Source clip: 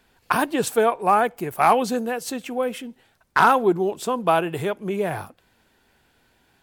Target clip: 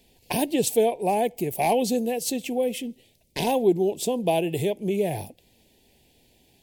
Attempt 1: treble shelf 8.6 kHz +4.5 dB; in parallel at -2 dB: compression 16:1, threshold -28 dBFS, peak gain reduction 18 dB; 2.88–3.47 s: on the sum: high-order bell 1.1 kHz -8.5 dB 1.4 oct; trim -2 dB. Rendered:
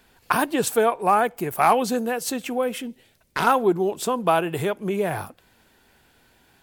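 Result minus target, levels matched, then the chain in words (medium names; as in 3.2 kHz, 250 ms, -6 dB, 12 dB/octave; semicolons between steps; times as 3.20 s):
1 kHz band +4.5 dB
Butterworth band-stop 1.3 kHz, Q 0.76; treble shelf 8.6 kHz +4.5 dB; in parallel at -2 dB: compression 16:1, threshold -28 dBFS, peak gain reduction 15 dB; 2.88–3.47 s: on the sum: high-order bell 1.1 kHz -8.5 dB 1.4 oct; trim -2 dB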